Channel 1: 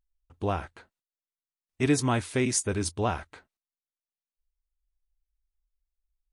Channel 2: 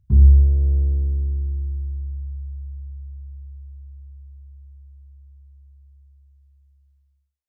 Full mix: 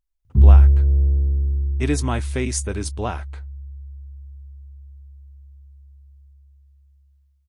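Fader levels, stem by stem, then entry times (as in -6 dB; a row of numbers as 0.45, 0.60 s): +1.0, +1.5 dB; 0.00, 0.25 s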